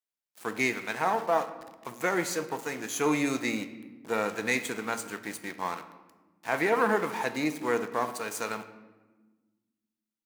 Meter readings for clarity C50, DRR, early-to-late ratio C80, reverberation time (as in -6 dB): 12.0 dB, 9.0 dB, 14.0 dB, 1.3 s